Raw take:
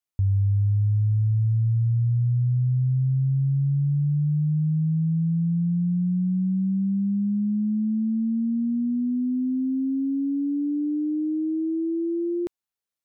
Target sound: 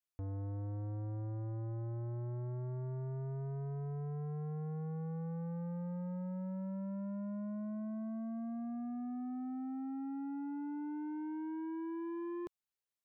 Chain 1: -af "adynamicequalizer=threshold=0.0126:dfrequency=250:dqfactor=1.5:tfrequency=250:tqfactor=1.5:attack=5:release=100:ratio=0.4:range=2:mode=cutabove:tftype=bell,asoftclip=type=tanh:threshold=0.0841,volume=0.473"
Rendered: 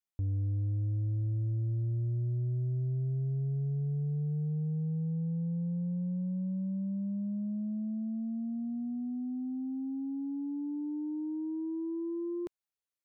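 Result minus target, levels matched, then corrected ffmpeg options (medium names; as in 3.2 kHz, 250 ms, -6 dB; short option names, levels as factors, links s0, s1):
saturation: distortion -9 dB
-af "adynamicequalizer=threshold=0.0126:dfrequency=250:dqfactor=1.5:tfrequency=250:tqfactor=1.5:attack=5:release=100:ratio=0.4:range=2:mode=cutabove:tftype=bell,asoftclip=type=tanh:threshold=0.0237,volume=0.473"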